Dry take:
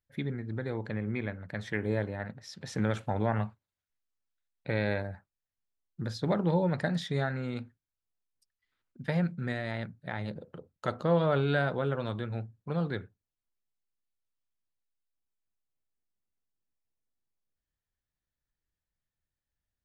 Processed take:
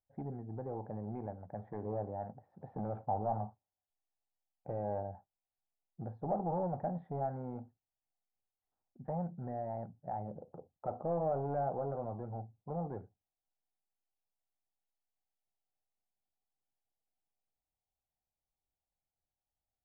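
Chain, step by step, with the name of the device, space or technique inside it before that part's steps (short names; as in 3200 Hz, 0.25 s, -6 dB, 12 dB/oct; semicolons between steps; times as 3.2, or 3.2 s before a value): overdriven synthesiser ladder filter (soft clip -27 dBFS, distortion -10 dB; ladder low-pass 830 Hz, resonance 75%); gain +5 dB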